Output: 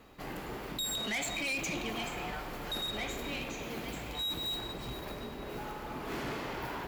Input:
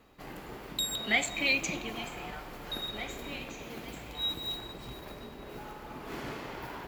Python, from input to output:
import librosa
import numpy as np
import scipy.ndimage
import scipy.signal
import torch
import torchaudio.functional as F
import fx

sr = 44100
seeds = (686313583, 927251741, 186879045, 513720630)

p1 = fx.over_compress(x, sr, threshold_db=-36.0, ratio=-1.0)
p2 = x + (p1 * librosa.db_to_amplitude(-1.0))
p3 = 10.0 ** (-28.0 / 20.0) * np.tanh(p2 / 10.0 ** (-28.0 / 20.0))
y = p3 * librosa.db_to_amplitude(-2.5)